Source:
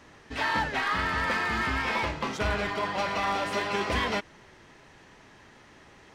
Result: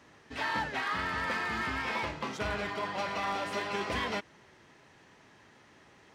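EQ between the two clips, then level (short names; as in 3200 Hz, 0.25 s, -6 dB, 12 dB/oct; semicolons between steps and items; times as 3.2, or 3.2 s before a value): HPF 77 Hz; -5.0 dB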